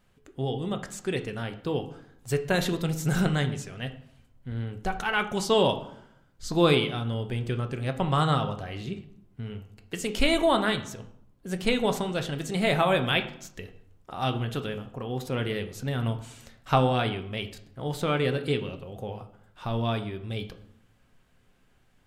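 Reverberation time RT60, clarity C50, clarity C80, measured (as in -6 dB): 0.75 s, 12.0 dB, 15.5 dB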